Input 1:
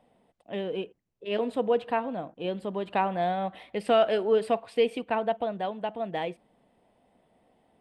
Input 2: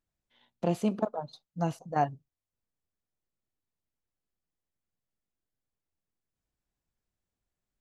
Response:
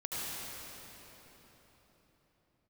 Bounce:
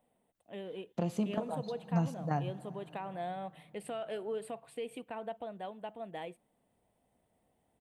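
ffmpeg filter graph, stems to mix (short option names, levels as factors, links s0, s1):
-filter_complex "[0:a]equalizer=f=5000:w=7.4:g=-7.5,alimiter=limit=0.106:level=0:latency=1:release=121,aexciter=amount=3.9:drive=5.6:freq=7700,volume=0.282[s0];[1:a]highpass=91,acompressor=threshold=0.0398:ratio=5,asubboost=boost=6:cutoff=220,adelay=350,volume=0.794,asplit=2[s1][s2];[s2]volume=0.106[s3];[2:a]atrim=start_sample=2205[s4];[s3][s4]afir=irnorm=-1:irlink=0[s5];[s0][s1][s5]amix=inputs=3:normalize=0"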